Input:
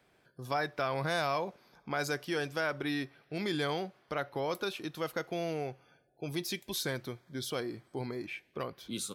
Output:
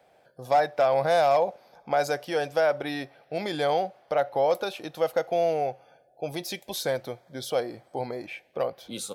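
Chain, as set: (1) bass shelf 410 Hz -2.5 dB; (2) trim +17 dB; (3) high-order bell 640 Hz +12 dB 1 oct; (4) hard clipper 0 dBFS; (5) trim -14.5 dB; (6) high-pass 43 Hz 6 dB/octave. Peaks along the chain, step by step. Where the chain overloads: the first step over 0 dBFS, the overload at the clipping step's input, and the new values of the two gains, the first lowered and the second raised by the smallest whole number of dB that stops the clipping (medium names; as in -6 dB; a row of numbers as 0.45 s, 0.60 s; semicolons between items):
-20.0 dBFS, -3.0 dBFS, +4.0 dBFS, 0.0 dBFS, -14.5 dBFS, -14.0 dBFS; step 3, 4.0 dB; step 2 +13 dB, step 5 -10.5 dB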